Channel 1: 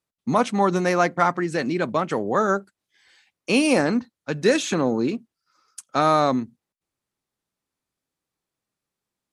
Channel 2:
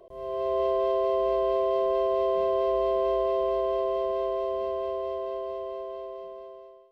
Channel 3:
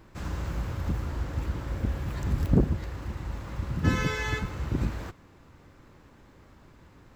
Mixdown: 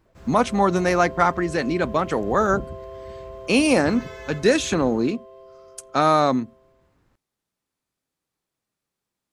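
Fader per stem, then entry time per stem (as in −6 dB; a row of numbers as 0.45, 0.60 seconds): +1.0, −13.0, −10.5 decibels; 0.00, 0.05, 0.00 seconds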